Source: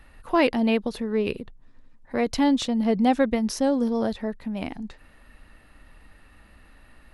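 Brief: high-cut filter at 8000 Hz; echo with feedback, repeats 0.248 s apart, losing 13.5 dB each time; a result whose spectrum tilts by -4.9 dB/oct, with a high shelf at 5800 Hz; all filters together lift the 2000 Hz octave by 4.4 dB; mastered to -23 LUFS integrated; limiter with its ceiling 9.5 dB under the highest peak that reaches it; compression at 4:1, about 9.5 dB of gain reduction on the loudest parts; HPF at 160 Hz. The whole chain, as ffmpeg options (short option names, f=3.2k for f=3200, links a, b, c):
-af "highpass=160,lowpass=8k,equalizer=f=2k:t=o:g=6,highshelf=f=5.8k:g=-5.5,acompressor=threshold=-27dB:ratio=4,alimiter=level_in=1.5dB:limit=-24dB:level=0:latency=1,volume=-1.5dB,aecho=1:1:248|496:0.211|0.0444,volume=11dB"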